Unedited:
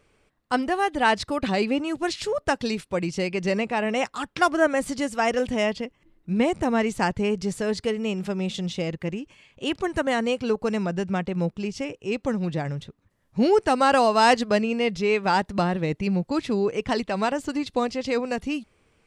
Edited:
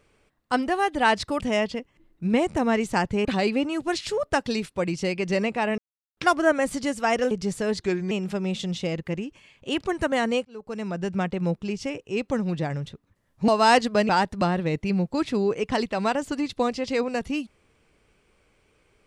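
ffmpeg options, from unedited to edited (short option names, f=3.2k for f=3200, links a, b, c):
-filter_complex "[0:a]asplit=11[a][b][c][d][e][f][g][h][i][j][k];[a]atrim=end=1.402[l];[b]atrim=start=5.458:end=7.312[m];[c]atrim=start=1.398:end=3.93,asetpts=PTS-STARTPTS,afade=t=out:st=2.528:d=0.004:c=hsin[n];[d]atrim=start=3.93:end=4.32,asetpts=PTS-STARTPTS,volume=0[o];[e]atrim=start=4.32:end=5.462,asetpts=PTS-STARTPTS,afade=t=in:d=0.004:c=hsin[p];[f]atrim=start=7.308:end=7.814[q];[g]atrim=start=7.81:end=8.06,asetpts=PTS-STARTPTS,asetrate=36603,aresample=44100,atrim=end_sample=13283,asetpts=PTS-STARTPTS[r];[h]atrim=start=8.056:end=10.4,asetpts=PTS-STARTPTS,afade=t=out:st=2.34:d=0.004:c=hsin[s];[i]atrim=start=10.4:end=13.432,asetpts=PTS-STARTPTS,afade=t=in:d=0.71[t];[j]atrim=start=14.038:end=14.652[u];[k]atrim=start=15.258[v];[l][m]acrossfade=d=0.004:c1=hsin:c2=hsin[w];[n][o][p]concat=n=3:v=0:a=1[x];[w][x]acrossfade=d=0.004:c1=hsin:c2=hsin[y];[y][q]acrossfade=d=0.004:c1=hsin:c2=hsin[z];[z][r]acrossfade=d=0.004:c1=hsin:c2=hsin[aa];[s][t]concat=n=2:v=0:a=1[ab];[aa][ab]acrossfade=d=0.004:c1=hsin:c2=hsin[ac];[ac][u]acrossfade=d=0.004:c1=hsin:c2=hsin[ad];[ad][v]acrossfade=d=0.004:c1=hsin:c2=hsin"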